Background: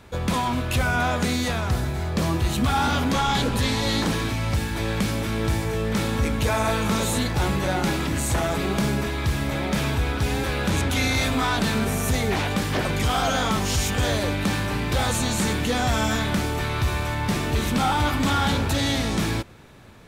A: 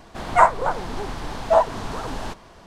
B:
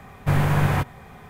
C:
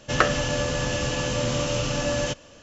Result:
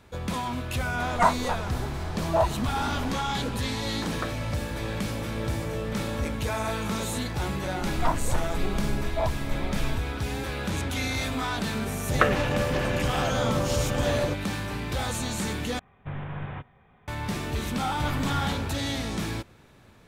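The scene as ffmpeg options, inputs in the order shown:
ffmpeg -i bed.wav -i cue0.wav -i cue1.wav -i cue2.wav -filter_complex "[1:a]asplit=2[link_01][link_02];[3:a]asplit=2[link_03][link_04];[2:a]asplit=2[link_05][link_06];[0:a]volume=-6.5dB[link_07];[link_03]lowpass=1500[link_08];[link_02]aemphasis=mode=reproduction:type=riaa[link_09];[link_04]afwtdn=0.0316[link_10];[link_05]aresample=8000,aresample=44100[link_11];[link_07]asplit=2[link_12][link_13];[link_12]atrim=end=15.794[link_14];[link_11]atrim=end=1.29,asetpts=PTS-STARTPTS,volume=-15dB[link_15];[link_13]atrim=start=17.076[link_16];[link_01]atrim=end=2.66,asetpts=PTS-STARTPTS,volume=-7dB,afade=type=in:duration=0.004:curve=hsin,afade=type=out:start_time=2.656:duration=0.004:curve=hsin,adelay=830[link_17];[link_08]atrim=end=2.62,asetpts=PTS-STARTPTS,volume=-12dB,afade=type=in:duration=0.004:curve=hsin,afade=type=out:start_time=2.616:duration=0.004:curve=hsin,adelay=4020[link_18];[link_09]atrim=end=2.66,asetpts=PTS-STARTPTS,volume=-14dB,afade=type=in:duration=0.004:curve=hsin,afade=type=out:start_time=2.656:duration=0.004:curve=hsin,adelay=7660[link_19];[link_10]atrim=end=2.62,asetpts=PTS-STARTPTS,volume=-1dB,afade=type=in:duration=0.004:curve=hsin,afade=type=out:start_time=2.616:duration=0.004:curve=hsin,adelay=12010[link_20];[link_06]atrim=end=1.29,asetpts=PTS-STARTPTS,volume=-13dB,afade=type=in:duration=0.004:curve=hsin,afade=type=out:start_time=1.286:duration=0.004:curve=hsin,adelay=17730[link_21];[link_14][link_15]acrossfade=duration=0.004:curve1=hsin:curve2=hsin[link_22];[link_22][link_16]acrossfade=duration=0.004:curve1=hsin:curve2=hsin[link_23];[link_23][link_17][link_18][link_19][link_20][link_21]amix=inputs=6:normalize=0" out.wav

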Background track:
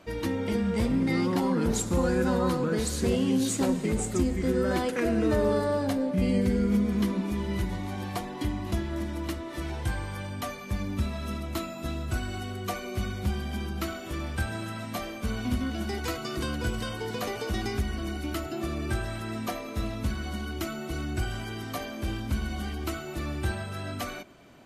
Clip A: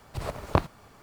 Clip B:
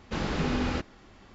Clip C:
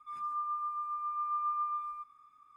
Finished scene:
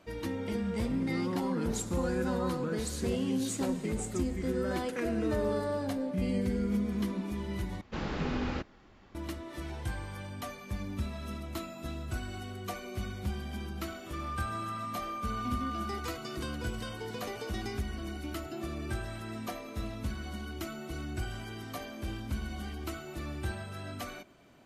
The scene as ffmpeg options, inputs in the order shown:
ffmpeg -i bed.wav -i cue0.wav -i cue1.wav -i cue2.wav -filter_complex "[0:a]volume=-6dB[link_01];[2:a]highshelf=frequency=5600:gain=-8.5[link_02];[3:a]acompressor=threshold=-35dB:ratio=6:attack=3.2:release=140:knee=1:detection=peak[link_03];[link_01]asplit=2[link_04][link_05];[link_04]atrim=end=7.814[link_06];[link_02]atrim=end=1.34,asetpts=PTS-STARTPTS,volume=-4.5dB[link_07];[link_05]atrim=start=9.146[link_08];[link_03]atrim=end=2.56,asetpts=PTS-STARTPTS,volume=-1.5dB,afade=type=in:duration=0.004:curve=hsin,afade=type=out:start_time=2.556:duration=0.004:curve=hsin,adelay=14060[link_09];[link_06][link_07]acrossfade=duration=0.004:curve1=hsin:curve2=hsin[link_10];[link_10][link_08]acrossfade=duration=0.004:curve1=hsin:curve2=hsin[link_11];[link_11][link_09]amix=inputs=2:normalize=0" out.wav

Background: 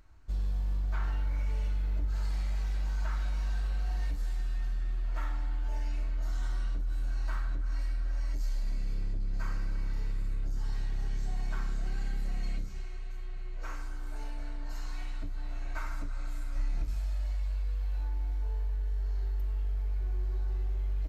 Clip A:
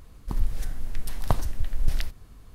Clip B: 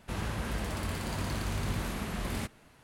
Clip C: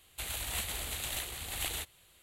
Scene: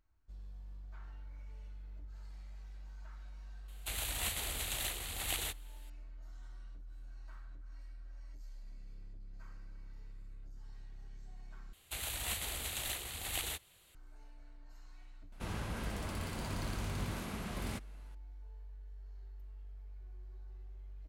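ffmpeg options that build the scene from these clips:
ffmpeg -i bed.wav -i cue0.wav -i cue1.wav -i cue2.wav -filter_complex "[3:a]asplit=2[link_01][link_02];[0:a]volume=-18dB[link_03];[link_02]acontrast=48[link_04];[2:a]bandreject=frequency=1800:width=22[link_05];[link_03]asplit=2[link_06][link_07];[link_06]atrim=end=11.734[link_08];[link_04]atrim=end=2.22,asetpts=PTS-STARTPTS,volume=-8dB[link_09];[link_07]atrim=start=13.946[link_10];[link_01]atrim=end=2.22,asetpts=PTS-STARTPTS,volume=-1dB,afade=type=in:duration=0.004:curve=hsin,afade=type=out:start_time=2.216:duration=0.004:curve=hsin,adelay=3680[link_11];[link_05]atrim=end=2.83,asetpts=PTS-STARTPTS,volume=-5.5dB,afade=type=in:duration=0.004:curve=hsin,afade=type=out:start_time=2.826:duration=0.004:curve=hsin,adelay=15320[link_12];[link_08][link_09]acrossfade=duration=0.004:curve1=hsin:curve2=hsin[link_13];[link_13][link_10]acrossfade=duration=0.004:curve1=hsin:curve2=hsin[link_14];[link_14][link_11][link_12]amix=inputs=3:normalize=0" out.wav

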